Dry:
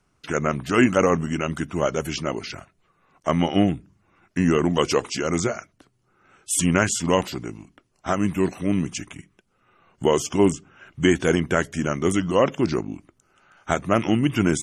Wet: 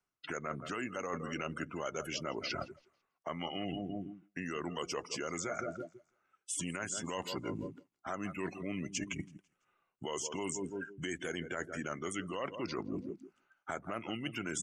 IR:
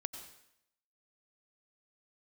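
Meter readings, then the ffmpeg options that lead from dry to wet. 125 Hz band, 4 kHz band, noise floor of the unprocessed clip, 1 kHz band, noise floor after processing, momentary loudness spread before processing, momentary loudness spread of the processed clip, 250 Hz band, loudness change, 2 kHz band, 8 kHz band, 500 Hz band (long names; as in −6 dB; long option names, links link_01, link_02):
−19.0 dB, −11.5 dB, −68 dBFS, −14.5 dB, −84 dBFS, 15 LU, 8 LU, −18.0 dB, −17.0 dB, −13.0 dB, −12.0 dB, −17.5 dB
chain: -filter_complex "[0:a]aecho=1:1:166|332|498|664:0.158|0.065|0.0266|0.0109,acrossover=split=86|1200|7800[link_01][link_02][link_03][link_04];[link_01]acompressor=threshold=-50dB:ratio=4[link_05];[link_02]acompressor=threshold=-27dB:ratio=4[link_06];[link_03]acompressor=threshold=-33dB:ratio=4[link_07];[link_04]acompressor=threshold=-41dB:ratio=4[link_08];[link_05][link_06][link_07][link_08]amix=inputs=4:normalize=0,afftdn=noise_reduction=26:noise_floor=-38,alimiter=limit=-18.5dB:level=0:latency=1:release=181,lowshelf=frequency=310:gain=-11,areverse,acompressor=threshold=-48dB:ratio=6,areverse,volume=11.5dB"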